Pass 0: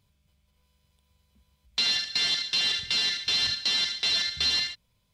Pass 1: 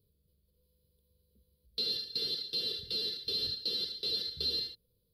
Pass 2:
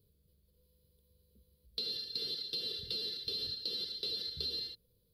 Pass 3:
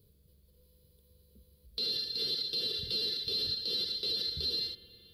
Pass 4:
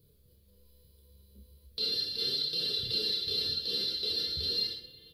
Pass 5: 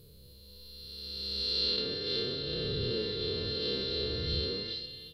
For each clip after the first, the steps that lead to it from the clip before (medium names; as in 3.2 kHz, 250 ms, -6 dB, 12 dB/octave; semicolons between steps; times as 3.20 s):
FFT filter 260 Hz 0 dB, 480 Hz +12 dB, 770 Hz -24 dB, 1.3 kHz -14 dB, 2 kHz -25 dB, 4.5 kHz +1 dB, 6.6 kHz -26 dB, 11 kHz +7 dB; trim -5 dB
compression, threshold -38 dBFS, peak gain reduction 9 dB; trim +2.5 dB
peak limiter -31.5 dBFS, peak gain reduction 7 dB; on a send at -13.5 dB: reverberation RT60 4.8 s, pre-delay 51 ms; on the sum: trim +6.5 dB
on a send: reverse bouncing-ball echo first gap 30 ms, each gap 1.1×, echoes 5; on the sum: flange 0.39 Hz, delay 6 ms, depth 9.6 ms, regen +46%; trim +4 dB
reverse spectral sustain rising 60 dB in 2.42 s; low-pass that closes with the level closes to 1.7 kHz, closed at -25 dBFS; trim +5 dB